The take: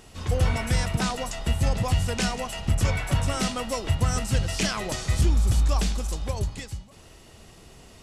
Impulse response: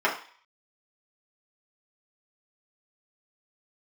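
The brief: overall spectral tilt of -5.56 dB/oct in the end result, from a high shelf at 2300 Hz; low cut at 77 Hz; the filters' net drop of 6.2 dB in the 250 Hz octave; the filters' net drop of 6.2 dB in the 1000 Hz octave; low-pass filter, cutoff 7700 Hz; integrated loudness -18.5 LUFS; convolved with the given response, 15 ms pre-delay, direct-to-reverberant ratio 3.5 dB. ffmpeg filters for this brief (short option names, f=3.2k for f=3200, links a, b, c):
-filter_complex "[0:a]highpass=77,lowpass=7.7k,equalizer=f=250:t=o:g=-9,equalizer=f=1k:t=o:g=-6,highshelf=f=2.3k:g=-9,asplit=2[a][b];[1:a]atrim=start_sample=2205,adelay=15[c];[b][c]afir=irnorm=-1:irlink=0,volume=-19dB[d];[a][d]amix=inputs=2:normalize=0,volume=12dB"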